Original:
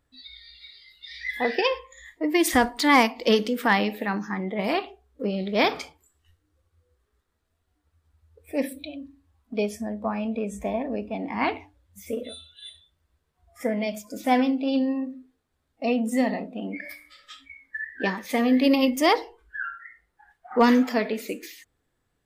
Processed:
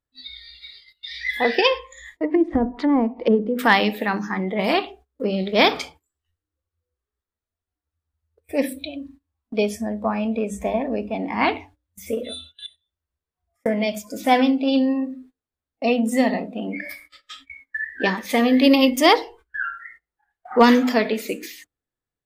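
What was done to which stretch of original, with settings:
1.73–3.59 treble ducked by the level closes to 420 Hz, closed at -18.5 dBFS
12.66–13.66 compressor 8:1, threshold -56 dBFS
whole clip: notches 50/100/150/200/250/300 Hz; gate -50 dBFS, range -20 dB; dynamic EQ 3500 Hz, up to +4 dB, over -44 dBFS, Q 2.4; gain +5 dB

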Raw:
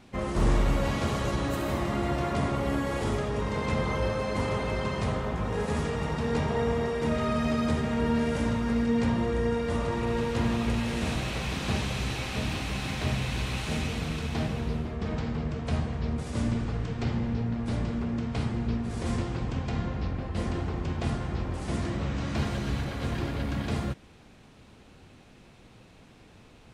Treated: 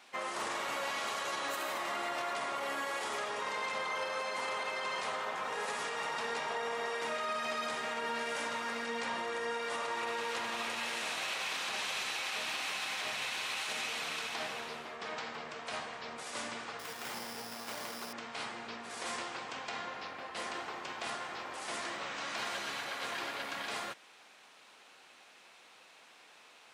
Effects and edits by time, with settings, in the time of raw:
16.79–18.13 sample-rate reducer 5200 Hz
whole clip: HPF 870 Hz 12 dB/oct; limiter -30 dBFS; gain +2.5 dB

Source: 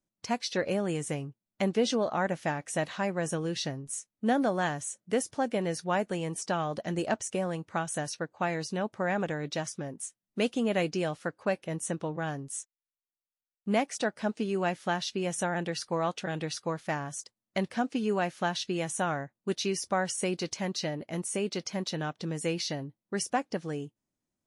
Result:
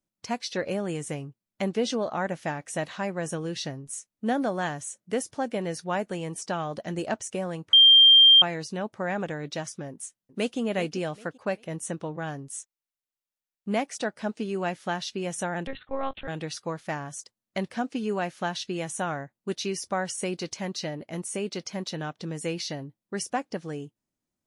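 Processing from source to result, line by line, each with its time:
7.73–8.42 bleep 3180 Hz -11 dBFS
9.9–10.59 echo throw 0.39 s, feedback 30%, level -13 dB
15.67–16.28 monotone LPC vocoder at 8 kHz 270 Hz

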